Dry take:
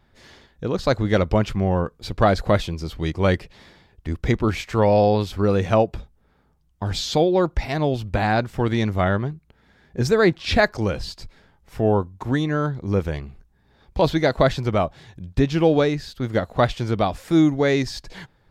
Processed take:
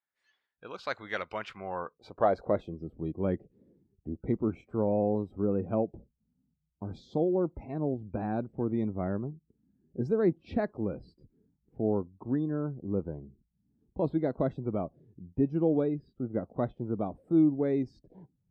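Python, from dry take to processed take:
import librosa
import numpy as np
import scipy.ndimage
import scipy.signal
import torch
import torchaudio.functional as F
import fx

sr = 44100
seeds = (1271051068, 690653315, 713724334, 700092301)

y = fx.filter_sweep_bandpass(x, sr, from_hz=1800.0, to_hz=270.0, start_s=1.46, end_s=2.85, q=1.1)
y = fx.noise_reduce_blind(y, sr, reduce_db=20)
y = y * 10.0 ** (-6.0 / 20.0)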